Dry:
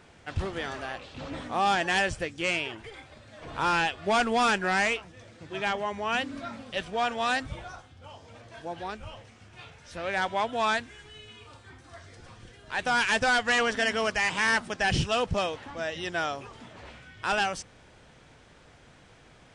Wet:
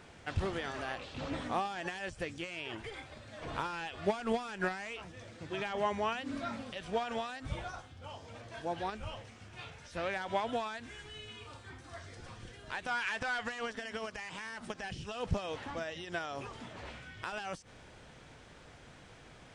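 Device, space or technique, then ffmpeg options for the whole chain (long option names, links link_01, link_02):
de-esser from a sidechain: -filter_complex "[0:a]asplit=2[link_01][link_02];[link_02]highpass=frequency=4500:width=0.5412,highpass=frequency=4500:width=1.3066,apad=whole_len=861791[link_03];[link_01][link_03]sidechaincompress=threshold=-52dB:ratio=12:attack=1.7:release=65,asplit=3[link_04][link_05][link_06];[link_04]afade=type=out:start_time=12.87:duration=0.02[link_07];[link_05]equalizer=frequency=1600:width=0.4:gain=9,afade=type=in:start_time=12.87:duration=0.02,afade=type=out:start_time=13.43:duration=0.02[link_08];[link_06]afade=type=in:start_time=13.43:duration=0.02[link_09];[link_07][link_08][link_09]amix=inputs=3:normalize=0"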